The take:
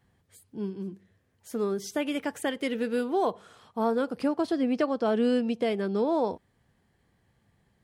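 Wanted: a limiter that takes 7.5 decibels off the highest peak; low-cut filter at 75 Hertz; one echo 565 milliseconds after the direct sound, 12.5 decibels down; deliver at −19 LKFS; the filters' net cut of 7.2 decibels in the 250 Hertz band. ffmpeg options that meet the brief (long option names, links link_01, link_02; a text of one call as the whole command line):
ffmpeg -i in.wav -af "highpass=75,equalizer=frequency=250:width_type=o:gain=-8.5,alimiter=limit=-24dB:level=0:latency=1,aecho=1:1:565:0.237,volume=16dB" out.wav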